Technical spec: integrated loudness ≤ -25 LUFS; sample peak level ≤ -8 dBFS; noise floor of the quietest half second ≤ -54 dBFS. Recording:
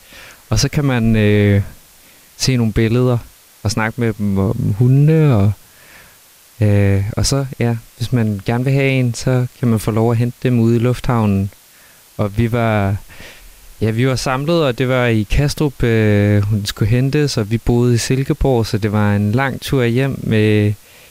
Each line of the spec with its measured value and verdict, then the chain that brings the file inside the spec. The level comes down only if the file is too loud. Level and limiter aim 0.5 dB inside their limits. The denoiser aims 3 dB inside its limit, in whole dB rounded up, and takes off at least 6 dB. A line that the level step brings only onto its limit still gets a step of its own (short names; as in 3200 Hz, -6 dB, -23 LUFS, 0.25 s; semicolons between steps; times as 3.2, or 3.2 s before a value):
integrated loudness -16.0 LUFS: fail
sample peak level -4.0 dBFS: fail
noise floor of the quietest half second -46 dBFS: fail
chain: gain -9.5 dB